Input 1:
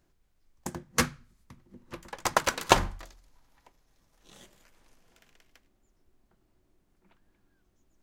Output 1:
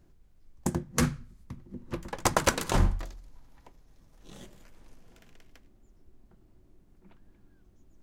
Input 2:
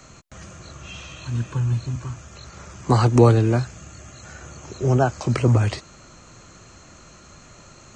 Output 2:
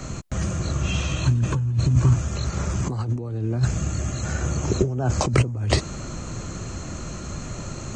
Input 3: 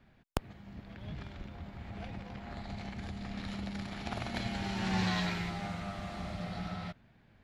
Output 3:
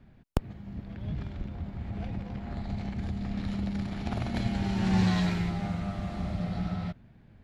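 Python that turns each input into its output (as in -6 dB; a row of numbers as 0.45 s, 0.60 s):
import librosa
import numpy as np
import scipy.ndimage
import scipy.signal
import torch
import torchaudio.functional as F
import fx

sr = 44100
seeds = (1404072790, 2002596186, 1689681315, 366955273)

y = fx.low_shelf(x, sr, hz=480.0, db=11.0)
y = fx.over_compress(y, sr, threshold_db=-20.0, ratio=-1.0)
y = fx.dynamic_eq(y, sr, hz=9200.0, q=1.0, threshold_db=-51.0, ratio=4.0, max_db=5)
y = y * 10.0 ** (-1.5 / 20.0)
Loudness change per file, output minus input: -1.0 LU, -4.5 LU, +6.0 LU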